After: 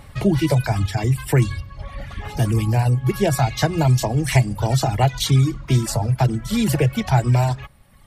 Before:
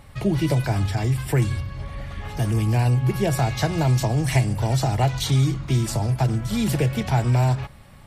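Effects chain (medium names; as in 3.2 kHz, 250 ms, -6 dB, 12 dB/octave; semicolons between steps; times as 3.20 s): reverb removal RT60 1.3 s; 2.66–3.07 s: dynamic bell 3.2 kHz, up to -5 dB, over -47 dBFS, Q 0.72; trim +4.5 dB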